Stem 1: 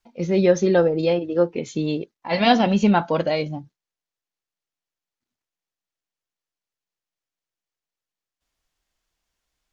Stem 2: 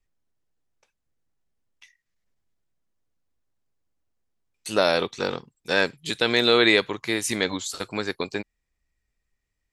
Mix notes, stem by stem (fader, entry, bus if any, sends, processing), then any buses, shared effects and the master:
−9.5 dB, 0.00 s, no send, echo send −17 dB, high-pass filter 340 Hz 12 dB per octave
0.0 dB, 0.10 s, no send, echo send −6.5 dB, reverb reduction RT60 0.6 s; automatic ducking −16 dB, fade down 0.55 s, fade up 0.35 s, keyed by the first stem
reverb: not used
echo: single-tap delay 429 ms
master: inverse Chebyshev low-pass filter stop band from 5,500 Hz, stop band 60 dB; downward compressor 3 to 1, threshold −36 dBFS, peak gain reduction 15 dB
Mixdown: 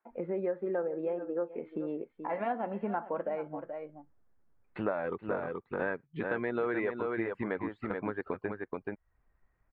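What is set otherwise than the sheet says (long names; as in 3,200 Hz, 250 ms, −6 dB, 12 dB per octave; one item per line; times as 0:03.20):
stem 1 −9.5 dB → +2.5 dB
stem 2 0.0 dB → +8.0 dB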